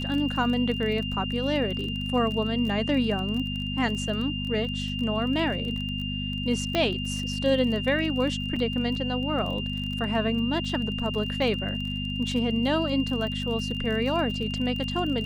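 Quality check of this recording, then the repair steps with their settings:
crackle 26 per s -32 dBFS
hum 50 Hz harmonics 5 -32 dBFS
whine 2.8 kHz -33 dBFS
6.75 s: pop -12 dBFS
8.56 s: dropout 4.2 ms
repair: de-click; band-stop 2.8 kHz, Q 30; de-hum 50 Hz, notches 5; interpolate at 8.56 s, 4.2 ms

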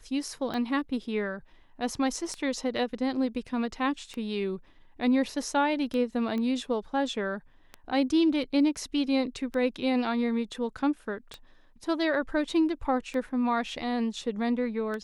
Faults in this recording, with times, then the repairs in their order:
tick 33 1/3 rpm -22 dBFS
6.38 s: pop -23 dBFS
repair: de-click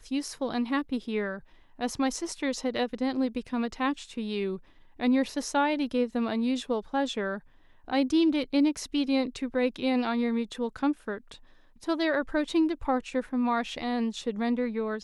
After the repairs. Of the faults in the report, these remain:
nothing left

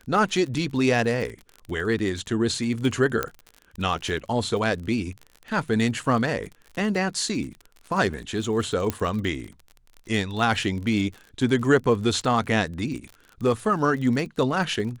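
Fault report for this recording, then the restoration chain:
crackle 38 per s -32 dBFS
3.23 s: pop -9 dBFS
8.90 s: pop -10 dBFS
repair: de-click

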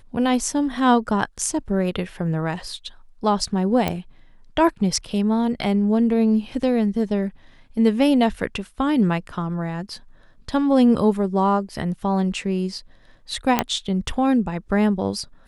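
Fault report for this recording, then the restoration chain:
3.88 s: pop -9 dBFS
13.59 s: pop -3 dBFS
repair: de-click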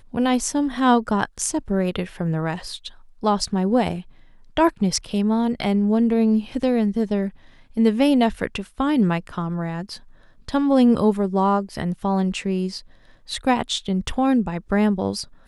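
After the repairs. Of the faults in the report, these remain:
nothing left

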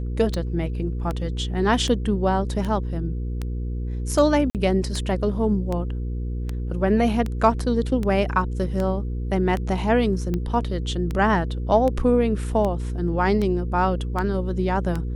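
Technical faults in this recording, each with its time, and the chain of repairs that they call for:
hum 60 Hz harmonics 8 -27 dBFS
tick 78 rpm -15 dBFS
4.50–4.55 s: dropout 48 ms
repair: de-click; de-hum 60 Hz, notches 8; interpolate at 4.50 s, 48 ms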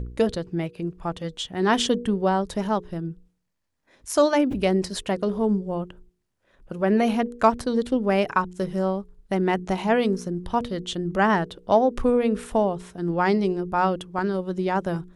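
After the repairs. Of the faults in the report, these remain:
nothing left

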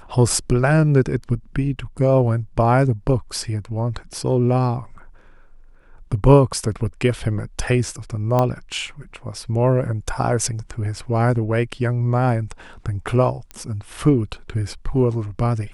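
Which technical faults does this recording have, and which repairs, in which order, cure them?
8.39 s: pop -8 dBFS
13.51 s: pop -19 dBFS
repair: de-click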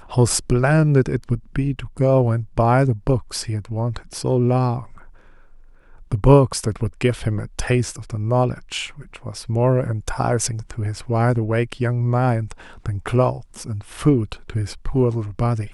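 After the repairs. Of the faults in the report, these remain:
13.51 s: pop

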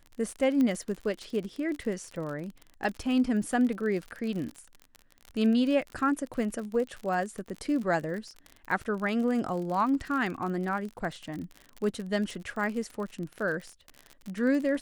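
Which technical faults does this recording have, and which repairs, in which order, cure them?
crackle 45 per s -34 dBFS
0.61 s: pop -18 dBFS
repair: de-click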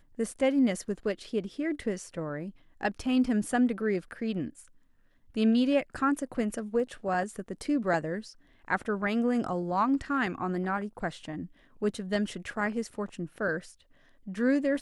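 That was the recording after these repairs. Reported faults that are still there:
0.61 s: pop

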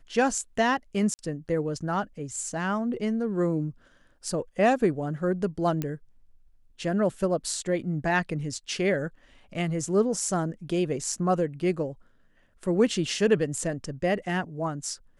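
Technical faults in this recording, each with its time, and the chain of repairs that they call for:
1.14–1.19 s: dropout 49 ms
5.82 s: pop -16 dBFS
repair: de-click; interpolate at 1.14 s, 49 ms

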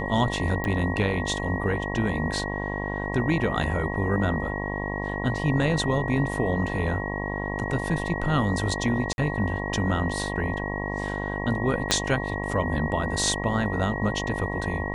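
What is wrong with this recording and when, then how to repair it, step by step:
buzz 50 Hz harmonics 22 -31 dBFS
whine 1.9 kHz -33 dBFS
0.64 s: pop -16 dBFS
9.13–9.18 s: dropout 51 ms
11.91 s: pop -5 dBFS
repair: de-click; band-stop 1.9 kHz, Q 30; de-hum 50 Hz, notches 22; interpolate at 9.13 s, 51 ms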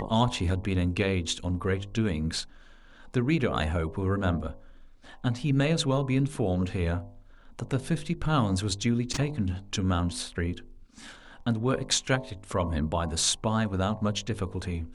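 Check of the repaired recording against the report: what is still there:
11.91 s: pop

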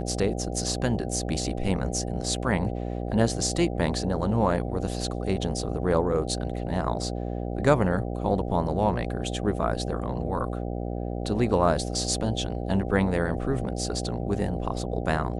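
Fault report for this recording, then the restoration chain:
buzz 60 Hz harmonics 13 -31 dBFS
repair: de-hum 60 Hz, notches 13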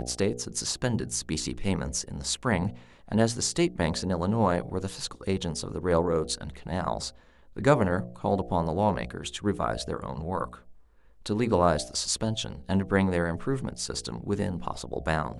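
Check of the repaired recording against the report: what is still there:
nothing left

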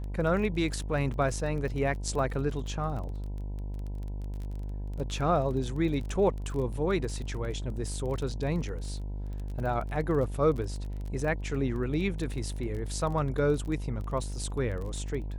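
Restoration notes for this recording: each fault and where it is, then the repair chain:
buzz 50 Hz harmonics 20 -35 dBFS
crackle 22 per s -36 dBFS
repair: de-click; de-hum 50 Hz, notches 20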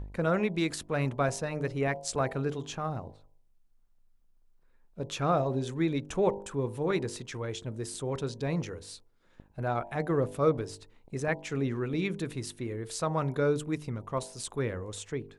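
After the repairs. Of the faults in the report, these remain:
nothing left

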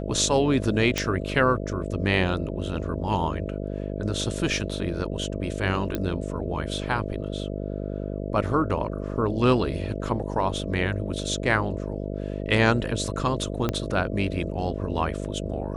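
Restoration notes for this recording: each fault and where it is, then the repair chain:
buzz 50 Hz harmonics 13 -31 dBFS
0.98 s: pop -9 dBFS
5.95 s: pop -13 dBFS
13.69 s: pop -11 dBFS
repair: de-click; de-hum 50 Hz, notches 13

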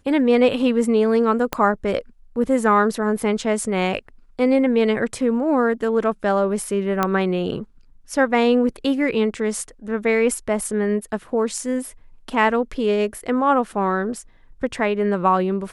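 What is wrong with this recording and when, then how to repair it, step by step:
1.53 s: pop -6 dBFS
7.03 s: pop -6 dBFS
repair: de-click

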